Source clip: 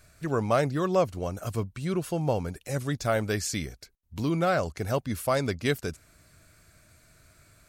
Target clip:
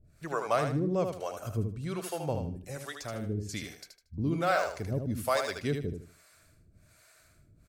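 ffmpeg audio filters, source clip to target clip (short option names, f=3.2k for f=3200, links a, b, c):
-filter_complex "[0:a]asettb=1/sr,asplit=3[a][b][c];[a]atrim=end=2.354[d];[b]atrim=start=2.35:end=3.49,asetpts=PTS-STARTPTS,afade=t=in:d=0.004:c=qsin,afade=t=out:st=1.136:d=0.004:c=qsin,acrossover=split=440|1900[e][f][g];[e]acompressor=threshold=-30dB:ratio=4[h];[f]acompressor=threshold=-39dB:ratio=4[i];[g]acompressor=threshold=-42dB:ratio=4[j];[h][i][j]amix=inputs=3:normalize=0[k];[c]atrim=start=3.486[l];[d][k]acrossfade=d=0.004:c1=hsin:c2=qsin[m];[m][l]acrossfade=d=0.004:c1=qsin:c2=hsin,asettb=1/sr,asplit=3[n][o][p];[n]atrim=end=4.474[q];[o]atrim=start=4.47:end=5.55,asetpts=PTS-STARTPTS,afade=t=in:d=0.004:c=qsin,afade=t=out:st=1.076:d=0.004:c=qsin,acrusher=bits=9:mode=log:mix=0:aa=0.000001[r];[p]atrim=start=5.546[s];[q][r]acrossfade=d=0.004:c1=hsin:c2=qsin[t];[t][s]acrossfade=d=0.004:c1=qsin:c2=hsin,acrossover=split=450[u][v];[u]aeval=exprs='val(0)*(1-1/2+1/2*cos(2*PI*1.2*n/s))':c=same[w];[v]aeval=exprs='val(0)*(1-1/2-1/2*cos(2*PI*1.2*n/s))':c=same[x];[w][x]amix=inputs=2:normalize=0,asplit=2[y][z];[z]aecho=0:1:77|154|231|308:0.501|0.14|0.0393|0.011[aa];[y][aa]amix=inputs=2:normalize=0"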